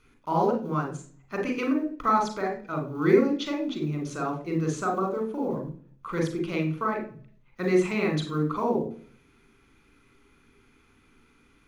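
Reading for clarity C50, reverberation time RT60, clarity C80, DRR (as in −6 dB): 8.0 dB, 0.45 s, 14.0 dB, 2.5 dB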